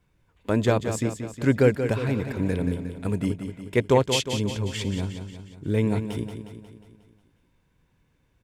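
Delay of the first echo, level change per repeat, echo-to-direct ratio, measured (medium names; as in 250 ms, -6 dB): 180 ms, -5.0 dB, -7.0 dB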